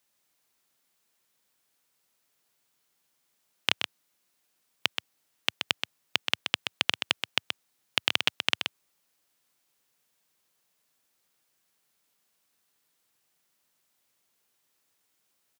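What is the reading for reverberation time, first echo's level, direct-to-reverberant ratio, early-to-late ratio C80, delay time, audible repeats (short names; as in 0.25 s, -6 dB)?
none, -6.5 dB, none, none, 0.127 s, 1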